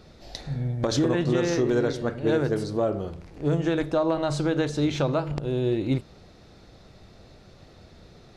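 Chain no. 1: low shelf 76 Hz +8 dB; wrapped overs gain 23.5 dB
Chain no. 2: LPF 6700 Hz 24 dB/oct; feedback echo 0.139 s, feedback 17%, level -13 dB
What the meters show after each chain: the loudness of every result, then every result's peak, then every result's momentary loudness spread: -28.0, -25.5 LUFS; -23.5, -12.0 dBFS; 6, 8 LU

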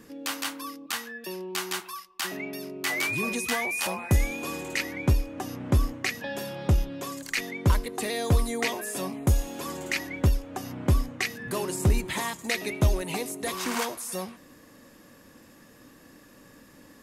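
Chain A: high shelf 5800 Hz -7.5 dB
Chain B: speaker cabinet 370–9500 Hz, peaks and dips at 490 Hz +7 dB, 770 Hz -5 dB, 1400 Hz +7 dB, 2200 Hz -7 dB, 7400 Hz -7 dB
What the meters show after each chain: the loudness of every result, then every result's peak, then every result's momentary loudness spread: -29.5, -32.5 LUFS; -11.0, -13.0 dBFS; 10, 8 LU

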